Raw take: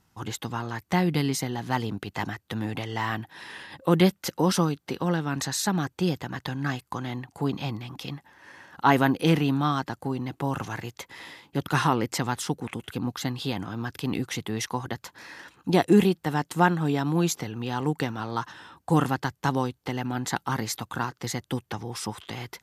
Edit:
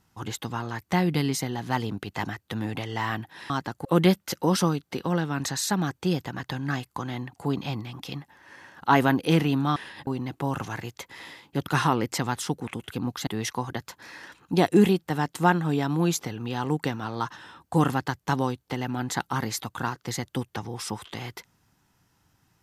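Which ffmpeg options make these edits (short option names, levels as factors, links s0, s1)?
-filter_complex "[0:a]asplit=6[s0][s1][s2][s3][s4][s5];[s0]atrim=end=3.502[s6];[s1]atrim=start=9.718:end=10.072[s7];[s2]atrim=start=3.808:end=9.722[s8];[s3]atrim=start=3.498:end=3.812[s9];[s4]atrim=start=10.068:end=13.272[s10];[s5]atrim=start=14.428[s11];[s6][s7]acrossfade=d=0.004:c1=hsin:c2=hsin[s12];[s12][s8]acrossfade=d=0.004:c1=hsin:c2=hsin[s13];[s13][s9]acrossfade=d=0.004:c1=hsin:c2=hsin[s14];[s14][s10]acrossfade=d=0.004:c1=hsin:c2=hsin[s15];[s15][s11]acrossfade=d=0.004:c1=hsin:c2=hsin"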